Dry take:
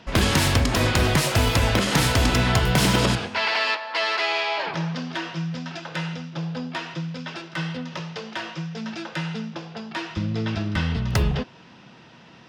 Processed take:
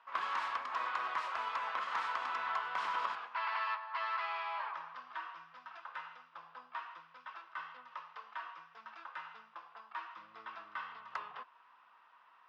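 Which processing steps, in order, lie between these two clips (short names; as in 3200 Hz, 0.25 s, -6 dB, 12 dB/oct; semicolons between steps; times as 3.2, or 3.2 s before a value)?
ladder band-pass 1200 Hz, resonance 70%; gain -3 dB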